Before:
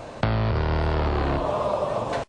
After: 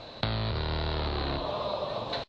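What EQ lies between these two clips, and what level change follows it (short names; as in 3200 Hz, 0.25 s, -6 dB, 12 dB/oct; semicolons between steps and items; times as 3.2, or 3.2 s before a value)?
synth low-pass 4000 Hz, resonance Q 9; -8.0 dB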